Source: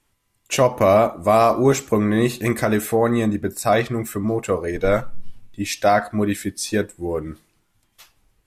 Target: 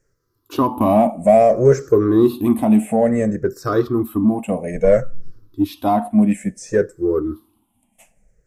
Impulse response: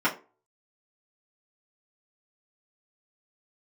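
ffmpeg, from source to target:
-filter_complex "[0:a]afftfilt=real='re*pow(10,20/40*sin(2*PI*(0.55*log(max(b,1)*sr/1024/100)/log(2)-(-0.59)*(pts-256)/sr)))':imag='im*pow(10,20/40*sin(2*PI*(0.55*log(max(b,1)*sr/1024/100)/log(2)-(-0.59)*(pts-256)/sr)))':win_size=1024:overlap=0.75,acrossover=split=4600[link_01][link_02];[link_02]acompressor=threshold=-32dB:ratio=4:attack=1:release=60[link_03];[link_01][link_03]amix=inputs=2:normalize=0,asplit=2[link_04][link_05];[link_05]asoftclip=type=tanh:threshold=-13.5dB,volume=-5dB[link_06];[link_04][link_06]amix=inputs=2:normalize=0,equalizer=frequency=250:width_type=o:width=1:gain=7,equalizer=frequency=500:width_type=o:width=1:gain=3,equalizer=frequency=2000:width_type=o:width=1:gain=-5,equalizer=frequency=4000:width_type=o:width=1:gain=-9,volume=-7.5dB"

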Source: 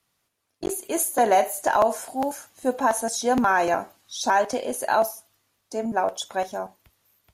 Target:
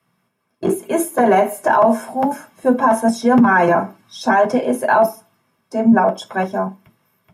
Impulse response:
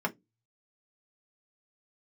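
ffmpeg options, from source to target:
-filter_complex "[0:a]lowshelf=frequency=190:gain=9[link_01];[1:a]atrim=start_sample=2205[link_02];[link_01][link_02]afir=irnorm=-1:irlink=0,alimiter=limit=-5dB:level=0:latency=1:release=20"

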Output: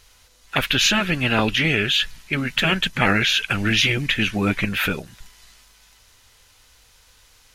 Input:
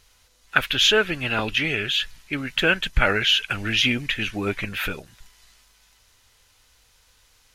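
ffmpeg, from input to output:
ffmpeg -i in.wav -af "afftfilt=real='re*lt(hypot(re,im),0.398)':imag='im*lt(hypot(re,im),0.398)':win_size=1024:overlap=0.75,adynamicequalizer=threshold=0.00631:dfrequency=190:dqfactor=1.3:tfrequency=190:tqfactor=1.3:attack=5:release=100:ratio=0.375:range=2.5:mode=boostabove:tftype=bell,volume=5dB" out.wav

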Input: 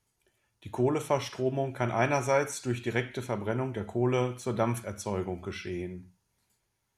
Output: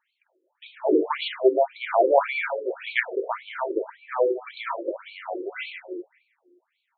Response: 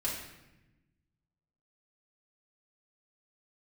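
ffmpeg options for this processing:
-filter_complex "[0:a]asettb=1/sr,asplit=3[link_01][link_02][link_03];[link_01]atrim=end=2.034[link_04];[link_02]atrim=start=2.03:end=3.3,asetpts=PTS-STARTPTS,afade=type=in:duration=0.004:curve=qsin,afade=type=out:start_time=1.266:duration=0.004:curve=qsin,lowshelf=frequency=380:width_type=q:width=3:gain=-6[link_05];[link_03]atrim=start=3.296[link_06];[link_04][link_05]acrossfade=duration=0.004:curve1=hsin:curve2=qsin[link_07];[link_07][link_06]acrossfade=duration=0.004:curve1=qsin:curve2=hsin,asplit=2[link_08][link_09];[1:a]atrim=start_sample=2205[link_10];[link_09][link_10]afir=irnorm=-1:irlink=0,volume=-4.5dB[link_11];[link_08][link_11]amix=inputs=2:normalize=0,afftfilt=real='re*between(b*sr/1024,380*pow(3200/380,0.5+0.5*sin(2*PI*1.8*pts/sr))/1.41,380*pow(3200/380,0.5+0.5*sin(2*PI*1.8*pts/sr))*1.41)':imag='im*between(b*sr/1024,380*pow(3200/380,0.5+0.5*sin(2*PI*1.8*pts/sr))/1.41,380*pow(3200/380,0.5+0.5*sin(2*PI*1.8*pts/sr))*1.41)':win_size=1024:overlap=0.75,volume=7.5dB"

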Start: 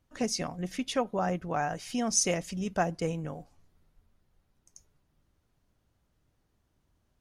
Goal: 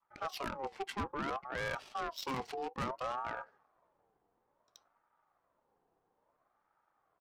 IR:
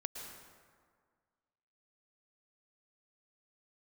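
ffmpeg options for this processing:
-af "highpass=220,adynamicequalizer=threshold=0.00631:dfrequency=570:dqfactor=1.2:tfrequency=570:tqfactor=1.2:attack=5:release=100:ratio=0.375:range=2:mode=cutabove:tftype=bell,areverse,acompressor=threshold=-38dB:ratio=6,areverse,asetrate=33038,aresample=44100,atempo=1.33484,asoftclip=type=tanh:threshold=-32.5dB,adynamicsmooth=sensitivity=7.5:basefreq=590,crystalizer=i=8:c=0,aeval=exprs='0.0447*sin(PI/2*1.78*val(0)/0.0447)':channel_layout=same,aeval=exprs='val(0)*sin(2*PI*830*n/s+830*0.3/0.59*sin(2*PI*0.59*n/s))':channel_layout=same,volume=-1dB"

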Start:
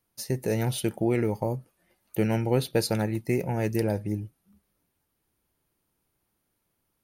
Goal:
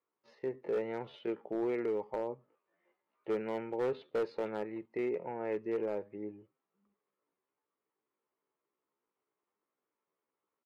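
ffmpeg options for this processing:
ffmpeg -i in.wav -af "highpass=400,equalizer=frequency=420:width_type=q:width=4:gain=6,equalizer=frequency=720:width_type=q:width=4:gain=-4,equalizer=frequency=1100:width_type=q:width=4:gain=5,equalizer=frequency=1600:width_type=q:width=4:gain=-5,equalizer=frequency=2500:width_type=q:width=4:gain=-4,lowpass=frequency=2500:width=0.5412,lowpass=frequency=2500:width=1.3066,atempo=0.66,volume=21.5dB,asoftclip=hard,volume=-21.5dB,volume=-6dB" out.wav

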